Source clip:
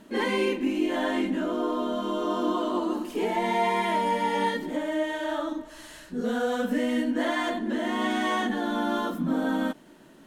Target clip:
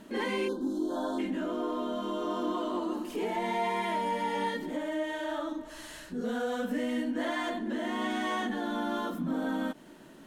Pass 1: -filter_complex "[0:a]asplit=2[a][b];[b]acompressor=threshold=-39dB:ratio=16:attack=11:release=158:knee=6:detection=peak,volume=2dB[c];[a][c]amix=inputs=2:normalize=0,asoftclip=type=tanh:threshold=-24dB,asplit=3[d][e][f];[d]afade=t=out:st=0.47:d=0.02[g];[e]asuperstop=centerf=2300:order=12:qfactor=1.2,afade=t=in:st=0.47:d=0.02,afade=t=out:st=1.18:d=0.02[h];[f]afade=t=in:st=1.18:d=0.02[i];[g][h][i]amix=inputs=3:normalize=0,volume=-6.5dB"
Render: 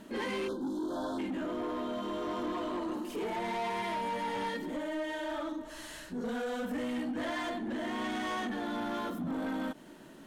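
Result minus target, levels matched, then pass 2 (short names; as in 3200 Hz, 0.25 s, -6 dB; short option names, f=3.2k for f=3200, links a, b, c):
soft clip: distortion +16 dB
-filter_complex "[0:a]asplit=2[a][b];[b]acompressor=threshold=-39dB:ratio=16:attack=11:release=158:knee=6:detection=peak,volume=2dB[c];[a][c]amix=inputs=2:normalize=0,asoftclip=type=tanh:threshold=-12.5dB,asplit=3[d][e][f];[d]afade=t=out:st=0.47:d=0.02[g];[e]asuperstop=centerf=2300:order=12:qfactor=1.2,afade=t=in:st=0.47:d=0.02,afade=t=out:st=1.18:d=0.02[h];[f]afade=t=in:st=1.18:d=0.02[i];[g][h][i]amix=inputs=3:normalize=0,volume=-6.5dB"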